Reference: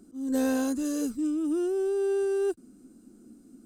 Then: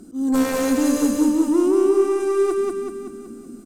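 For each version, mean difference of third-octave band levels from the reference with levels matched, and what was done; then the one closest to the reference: 6.0 dB: sine folder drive 7 dB, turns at -15.5 dBFS; on a send: feedback echo 0.189 s, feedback 53%, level -3 dB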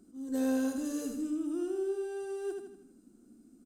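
2.5 dB: vocal rider 0.5 s; on a send: feedback echo 80 ms, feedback 48%, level -5 dB; on the sum: gain -7.5 dB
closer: second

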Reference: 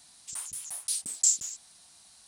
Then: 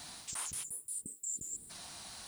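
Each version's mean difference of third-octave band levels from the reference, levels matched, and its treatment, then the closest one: 14.0 dB: reverse; compressor 16:1, threshold -42 dBFS, peak gain reduction 24 dB; reverse; added noise blue -70 dBFS; spectral gain 0.63–1.7, 510–7000 Hz -23 dB; high shelf 4400 Hz -10.5 dB; gain +14 dB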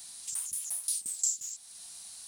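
4.5 dB: high shelf 2200 Hz +7.5 dB; compressor 2:1, threshold -43 dBFS, peak gain reduction 16.5 dB; high shelf 12000 Hz +12 dB; reverse echo 44 ms -16 dB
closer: second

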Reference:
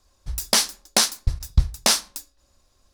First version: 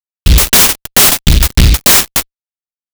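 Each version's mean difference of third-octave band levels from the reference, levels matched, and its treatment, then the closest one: 12.5 dB: notch 4100 Hz, Q 13; fuzz box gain 37 dB, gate -43 dBFS; maximiser +13 dB; noise-modulated delay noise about 3300 Hz, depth 0.36 ms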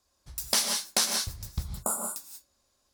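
7.5 dB: HPF 140 Hz 6 dB/oct; high shelf 7700 Hz +4.5 dB; spectral gain 1.63–2.09, 1500–6900 Hz -29 dB; non-linear reverb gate 0.21 s rising, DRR 3 dB; gain -8.5 dB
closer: second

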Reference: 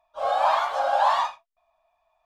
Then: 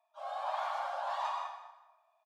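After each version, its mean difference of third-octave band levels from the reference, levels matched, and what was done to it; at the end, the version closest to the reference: 4.0 dB: steep high-pass 590 Hz 72 dB/oct; reverse; compressor, threshold -29 dBFS, peak gain reduction 12.5 dB; reverse; feedback echo 0.2 s, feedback 23%, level -15.5 dB; plate-style reverb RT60 1 s, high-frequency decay 0.6×, pre-delay 90 ms, DRR 0 dB; gain -7.5 dB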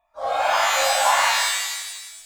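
8.5 dB: bell 800 Hz -3 dB 2.2 oct; LFO notch saw down 1.9 Hz 940–5300 Hz; in parallel at -11.5 dB: hard clip -21.5 dBFS, distortion -14 dB; on the sum: shimmer reverb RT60 1.2 s, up +12 st, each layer -2 dB, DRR -2.5 dB; gain -1.5 dB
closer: first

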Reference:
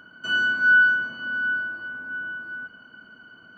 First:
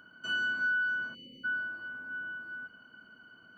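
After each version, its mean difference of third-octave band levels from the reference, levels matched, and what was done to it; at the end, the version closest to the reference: 2.5 dB: spectral delete 1.14–1.45, 560–2000 Hz; high shelf 5200 Hz +4 dB; compressor 10:1, threshold -20 dBFS, peak gain reduction 7.5 dB; gain -7.5 dB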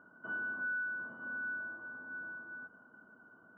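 5.5 dB: inverse Chebyshev low-pass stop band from 4100 Hz, stop band 60 dB; low shelf 180 Hz -11 dB; compressor 4:1, threshold -32 dBFS, peak gain reduction 9 dB; gain -4.5 dB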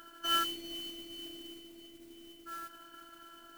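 12.5 dB: spectral delete 0.44–2.47, 560–2000 Hz; robotiser 337 Hz; modulation noise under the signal 11 dB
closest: first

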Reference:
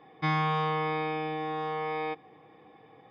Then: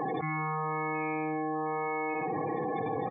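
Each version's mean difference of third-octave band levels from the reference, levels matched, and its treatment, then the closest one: 10.0 dB: spectral gate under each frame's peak -15 dB strong; on a send: feedback echo 61 ms, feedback 30%, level -9.5 dB; on the sum: fast leveller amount 100%; gain -6 dB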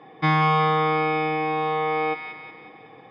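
2.0 dB: HPF 100 Hz; air absorption 73 m; thin delay 0.183 s, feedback 51%, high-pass 1400 Hz, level -4 dB; gain +8 dB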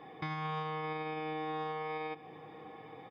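4.5 dB: limiter -27 dBFS, peak gain reduction 10 dB; compressor 2.5:1, threshold -42 dBFS, peak gain reduction 7.5 dB; on a send: echo 0.977 s -19 dB; on the sum: gain +4 dB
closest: second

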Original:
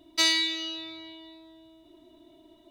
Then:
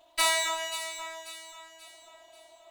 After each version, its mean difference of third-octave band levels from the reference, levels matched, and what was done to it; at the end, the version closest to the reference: 10.5 dB: minimum comb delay 3 ms; resonant low shelf 480 Hz -13 dB, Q 3; on a send: echo with dull and thin repeats by turns 0.268 s, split 2000 Hz, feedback 65%, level -7 dB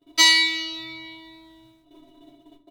3.0 dB: gate -54 dBFS, range -27 dB; comb 7.1 ms, depth 97%; shoebox room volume 130 m³, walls furnished, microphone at 0.83 m; gain +4.5 dB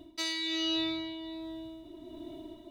8.0 dB: reverse; compressor 10:1, threshold -35 dBFS, peak gain reduction 16.5 dB; reverse; low shelf 500 Hz +8 dB; tremolo 1.3 Hz, depth 44%; gain +6.5 dB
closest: second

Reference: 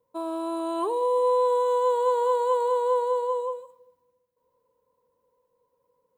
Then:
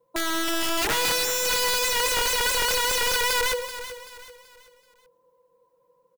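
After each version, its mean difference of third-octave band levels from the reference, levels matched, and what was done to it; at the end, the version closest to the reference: 20.5 dB: bell 680 Hz +3 dB 2.4 oct; comb 5.9 ms, depth 92%; wrapped overs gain 19.5 dB; on a send: feedback echo 0.382 s, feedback 38%, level -12.5 dB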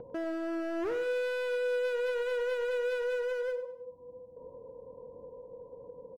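6.5 dB: steep low-pass 790 Hz 36 dB/oct; upward compressor, threshold -27 dBFS; overloaded stage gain 31 dB; feedback echo 99 ms, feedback 33%, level -13 dB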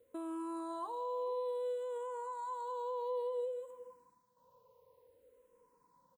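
3.0 dB: compressor 3:1, threshold -43 dBFS, peak gain reduction 17.5 dB; limiter -37 dBFS, peak gain reduction 6 dB; on a send: echo 0.425 s -18 dB; on the sum: endless phaser -0.57 Hz; gain +7 dB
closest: third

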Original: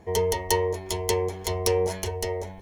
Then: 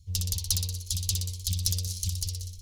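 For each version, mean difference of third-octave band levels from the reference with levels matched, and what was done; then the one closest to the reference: 16.0 dB: elliptic band-stop 110–4100 Hz, stop band 40 dB; in parallel at -6.5 dB: hard clip -23.5 dBFS, distortion -12 dB; on the sum: thinning echo 61 ms, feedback 63%, high-pass 280 Hz, level -5 dB; Doppler distortion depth 0.59 ms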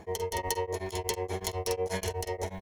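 5.5 dB: low shelf 320 Hz -4 dB; in parallel at +2 dB: negative-ratio compressor -36 dBFS, ratio -1; on the sum: doubler 47 ms -7 dB; beating tremolo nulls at 8.2 Hz; gain -5.5 dB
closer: second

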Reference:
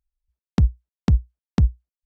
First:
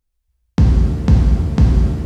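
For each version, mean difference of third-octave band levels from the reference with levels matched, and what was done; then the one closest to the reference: 7.0 dB: in parallel at -1 dB: limiter -16.5 dBFS, peak gain reduction 11 dB; on the sum: shimmer reverb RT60 1.8 s, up +7 st, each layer -8 dB, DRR -3 dB; gain +1 dB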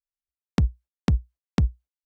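2.5 dB: gate -41 dBFS, range -21 dB; low shelf 150 Hz -6 dB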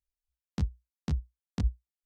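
4.0 dB: high shelf 3000 Hz +9.5 dB; detuned doubles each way 41 cents; gain -9 dB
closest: second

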